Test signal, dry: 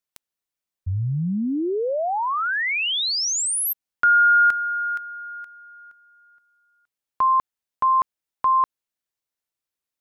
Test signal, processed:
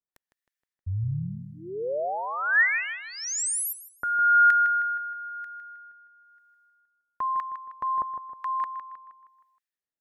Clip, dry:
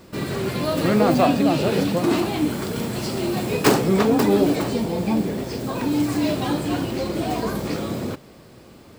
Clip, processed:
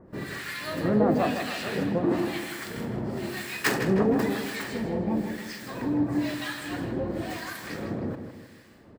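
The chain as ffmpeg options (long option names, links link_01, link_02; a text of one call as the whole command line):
ffmpeg -i in.wav -filter_complex "[0:a]acrossover=split=1100[link_01][link_02];[link_01]aeval=exprs='val(0)*(1-1/2+1/2*cos(2*PI*1*n/s))':channel_layout=same[link_03];[link_02]aeval=exprs='val(0)*(1-1/2-1/2*cos(2*PI*1*n/s))':channel_layout=same[link_04];[link_03][link_04]amix=inputs=2:normalize=0,equalizer=frequency=1800:width_type=o:width=0.37:gain=12,asplit=2[link_05][link_06];[link_06]adelay=157,lowpass=frequency=4600:poles=1,volume=-8dB,asplit=2[link_07][link_08];[link_08]adelay=157,lowpass=frequency=4600:poles=1,volume=0.48,asplit=2[link_09][link_10];[link_10]adelay=157,lowpass=frequency=4600:poles=1,volume=0.48,asplit=2[link_11][link_12];[link_12]adelay=157,lowpass=frequency=4600:poles=1,volume=0.48,asplit=2[link_13][link_14];[link_14]adelay=157,lowpass=frequency=4600:poles=1,volume=0.48,asplit=2[link_15][link_16];[link_16]adelay=157,lowpass=frequency=4600:poles=1,volume=0.48[link_17];[link_07][link_09][link_11][link_13][link_15][link_17]amix=inputs=6:normalize=0[link_18];[link_05][link_18]amix=inputs=2:normalize=0,volume=-4dB" out.wav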